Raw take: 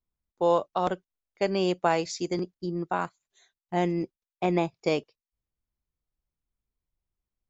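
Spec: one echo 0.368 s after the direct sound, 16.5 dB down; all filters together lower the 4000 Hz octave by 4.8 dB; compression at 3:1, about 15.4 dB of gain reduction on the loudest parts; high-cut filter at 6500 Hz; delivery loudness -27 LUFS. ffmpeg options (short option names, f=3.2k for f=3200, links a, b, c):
-af "lowpass=6.5k,equalizer=f=4k:t=o:g=-6,acompressor=threshold=-40dB:ratio=3,aecho=1:1:368:0.15,volume=14.5dB"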